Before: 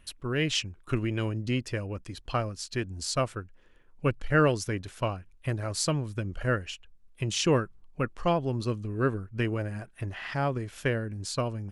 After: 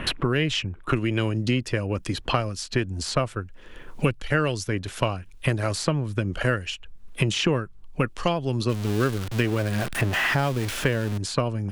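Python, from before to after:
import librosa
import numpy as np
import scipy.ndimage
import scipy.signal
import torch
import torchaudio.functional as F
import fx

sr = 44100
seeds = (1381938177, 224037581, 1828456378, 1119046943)

y = fx.zero_step(x, sr, step_db=-34.0, at=(8.69, 11.18))
y = fx.peak_eq(y, sr, hz=3300.0, db=2.5, octaves=0.77)
y = fx.band_squash(y, sr, depth_pct=100)
y = y * librosa.db_to_amplitude(3.5)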